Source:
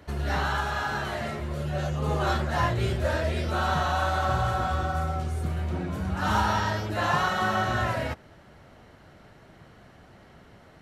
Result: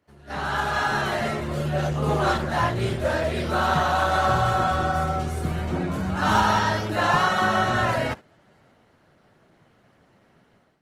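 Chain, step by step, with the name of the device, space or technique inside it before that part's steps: video call (HPF 110 Hz 12 dB/oct; AGC gain up to 12 dB; gate -28 dBFS, range -11 dB; gain -5.5 dB; Opus 20 kbps 48000 Hz)

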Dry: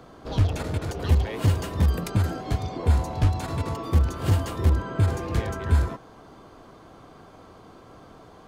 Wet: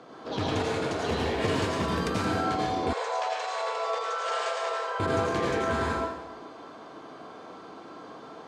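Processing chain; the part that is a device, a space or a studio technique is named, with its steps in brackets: supermarket ceiling speaker (BPF 240–6200 Hz; reverb RT60 0.95 s, pre-delay 77 ms, DRR -3.5 dB); 2.93–5 Chebyshev band-pass 470–8600 Hz, order 5

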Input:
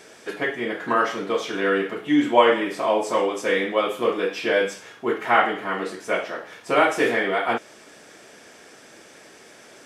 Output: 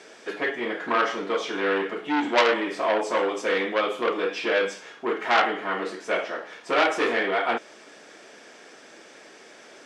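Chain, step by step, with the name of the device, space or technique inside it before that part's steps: public-address speaker with an overloaded transformer (core saturation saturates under 2700 Hz; BPF 220–6600 Hz)

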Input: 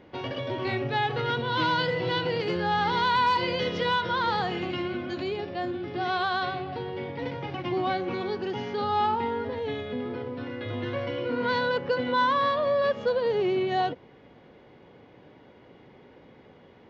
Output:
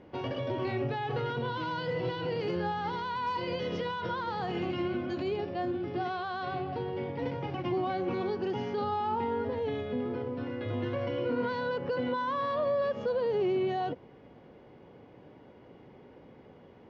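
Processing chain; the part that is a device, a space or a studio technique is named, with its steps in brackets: over-bright horn tweeter (resonant high shelf 2600 Hz +7 dB, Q 1.5; limiter -21.5 dBFS, peak gain reduction 10 dB); air absorption 130 m; bell 3700 Hz -14 dB 0.9 oct

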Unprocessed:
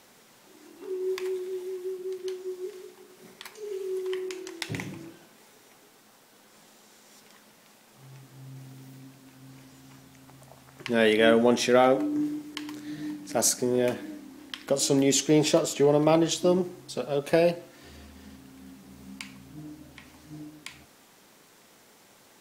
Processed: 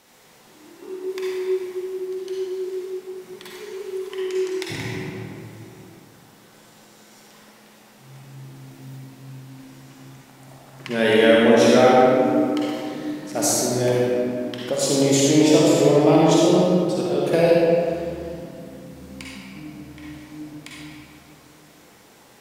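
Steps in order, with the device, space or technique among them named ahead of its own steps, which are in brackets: stairwell (reverb RT60 2.5 s, pre-delay 43 ms, DRR -5 dB)

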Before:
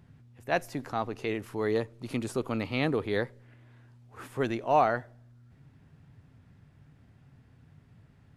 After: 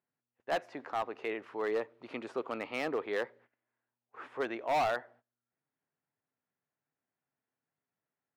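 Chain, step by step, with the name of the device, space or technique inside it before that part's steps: walkie-talkie (BPF 470–2400 Hz; hard clip -26 dBFS, distortion -8 dB; gate -59 dBFS, range -22 dB)

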